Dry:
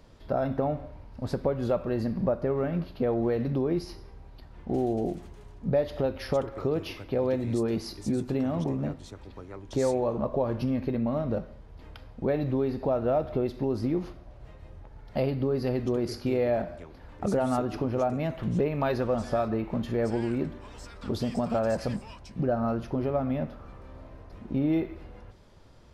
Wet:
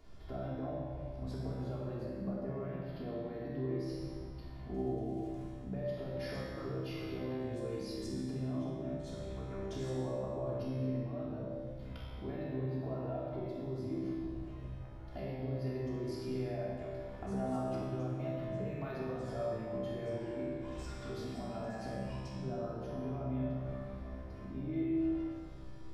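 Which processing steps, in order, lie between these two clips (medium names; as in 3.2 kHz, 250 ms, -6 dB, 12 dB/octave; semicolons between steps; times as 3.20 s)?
compression 4:1, threshold -37 dBFS, peak gain reduction 14 dB; feedback comb 65 Hz, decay 1.3 s, harmonics all, mix 90%; simulated room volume 2400 m³, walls mixed, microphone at 3.2 m; trim +6 dB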